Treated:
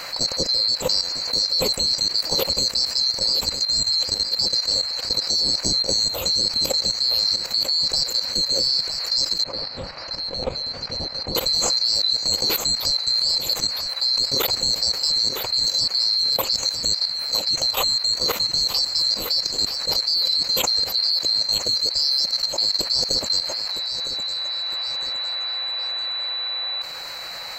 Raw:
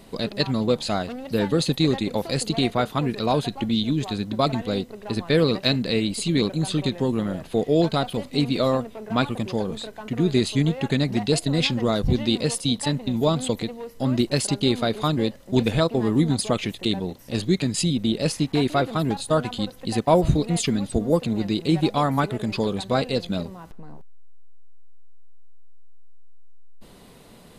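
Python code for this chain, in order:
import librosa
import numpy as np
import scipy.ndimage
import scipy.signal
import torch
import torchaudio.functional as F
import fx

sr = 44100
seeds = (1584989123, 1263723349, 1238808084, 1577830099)

y = fx.band_swap(x, sr, width_hz=4000)
y = fx.dmg_noise_band(y, sr, seeds[0], low_hz=650.0, high_hz=2500.0, level_db=-51.0)
y = fx.peak_eq(y, sr, hz=520.0, db=13.0, octaves=0.4)
y = fx.echo_feedback(y, sr, ms=959, feedback_pct=27, wet_db=-11)
y = fx.level_steps(y, sr, step_db=13)
y = fx.spacing_loss(y, sr, db_at_10k=36, at=(9.44, 11.35))
y = fx.env_flatten(y, sr, amount_pct=50)
y = y * 10.0 ** (5.0 / 20.0)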